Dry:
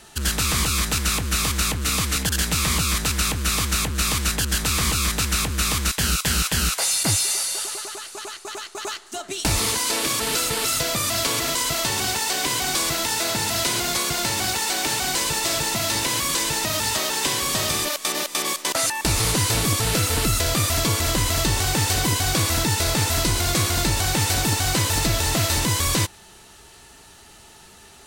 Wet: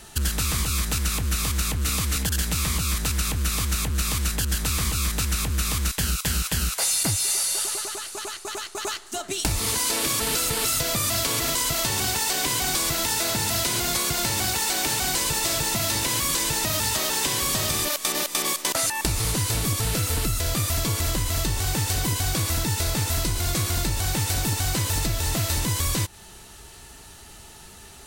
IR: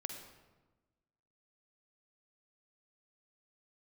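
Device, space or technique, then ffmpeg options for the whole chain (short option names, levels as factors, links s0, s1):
ASMR close-microphone chain: -af "lowshelf=f=130:g=8,acompressor=threshold=0.0794:ratio=6,highshelf=f=10000:g=7"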